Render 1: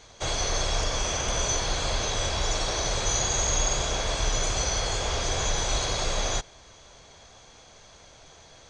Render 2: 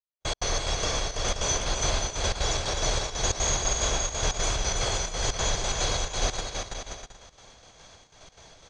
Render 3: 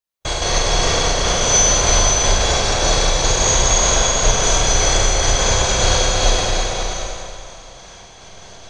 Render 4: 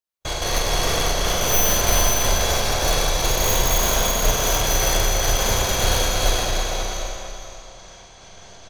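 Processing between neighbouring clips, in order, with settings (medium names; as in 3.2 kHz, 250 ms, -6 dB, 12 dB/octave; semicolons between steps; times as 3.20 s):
trance gate "...x.xx.x.xx" 181 bpm -60 dB; on a send: bouncing-ball echo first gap 330 ms, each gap 0.6×, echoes 5
Schroeder reverb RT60 2.1 s, combs from 33 ms, DRR -4 dB; trim +6 dB
tracing distortion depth 0.091 ms; delay 459 ms -12.5 dB; trim -4.5 dB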